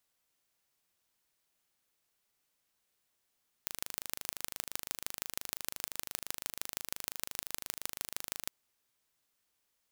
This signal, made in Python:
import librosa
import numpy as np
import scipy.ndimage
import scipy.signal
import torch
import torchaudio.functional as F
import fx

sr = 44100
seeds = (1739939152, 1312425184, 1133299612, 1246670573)

y = fx.impulse_train(sr, length_s=4.81, per_s=25.8, accent_every=4, level_db=-6.5)